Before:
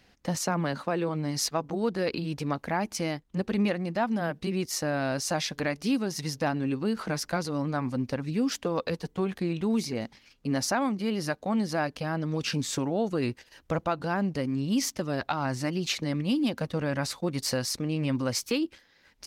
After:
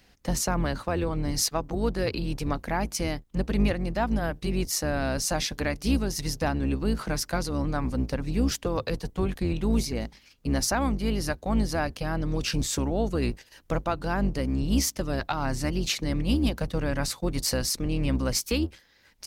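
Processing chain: octaver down 2 oct, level +1 dB; high shelf 7400 Hz +8.5 dB

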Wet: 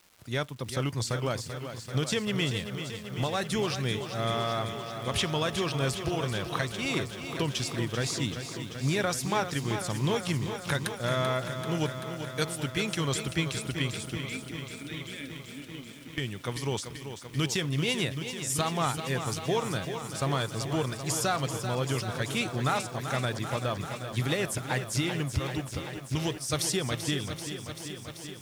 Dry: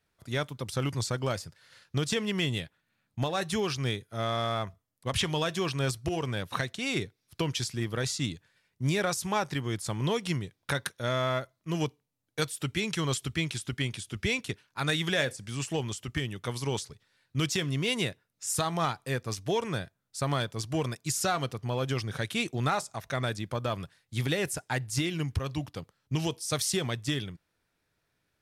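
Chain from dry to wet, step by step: 14.17–16.18 vowel filter i; crackle 540/s -46 dBFS; lo-fi delay 0.387 s, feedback 80%, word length 9-bit, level -9 dB

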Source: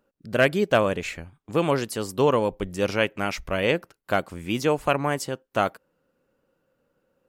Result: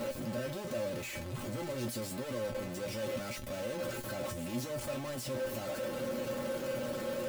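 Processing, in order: infinite clipping; resonator 120 Hz, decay 0.17 s, harmonics odd, mix 90%; small resonant body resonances 240/530 Hz, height 16 dB, ringing for 75 ms; gain -6 dB

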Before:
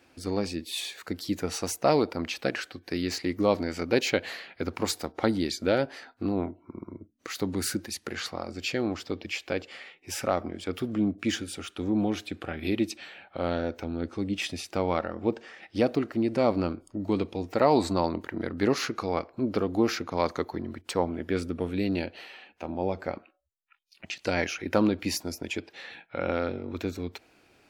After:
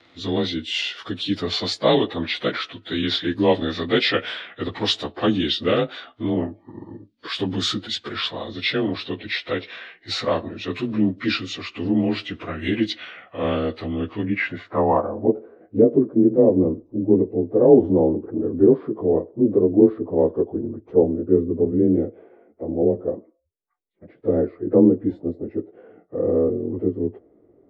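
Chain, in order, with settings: inharmonic rescaling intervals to 91%; low-pass sweep 3900 Hz -> 430 Hz, 13.86–15.52; gain +7 dB

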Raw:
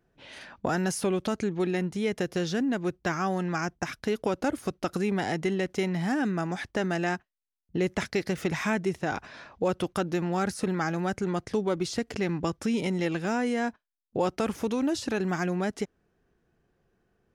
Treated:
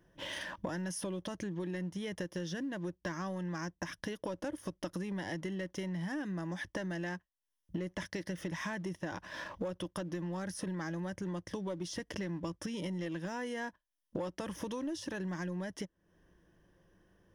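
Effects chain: ripple EQ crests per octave 1.2, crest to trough 10 dB; sample leveller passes 1; compressor 6:1, threshold -43 dBFS, peak gain reduction 23 dB; gain +5 dB

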